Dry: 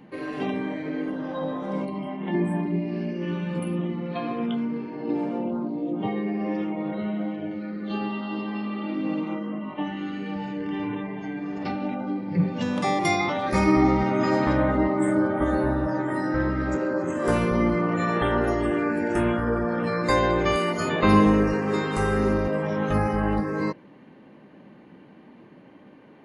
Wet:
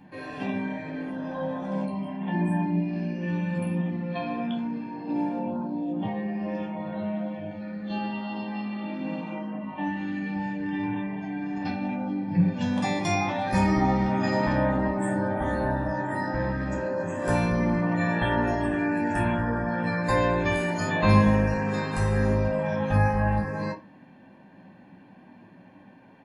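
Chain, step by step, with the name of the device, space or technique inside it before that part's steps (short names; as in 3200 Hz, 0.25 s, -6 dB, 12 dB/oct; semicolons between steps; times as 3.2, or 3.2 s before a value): microphone above a desk (comb 1.2 ms, depth 63%; reverb RT60 0.30 s, pre-delay 10 ms, DRR 1 dB); gain -4.5 dB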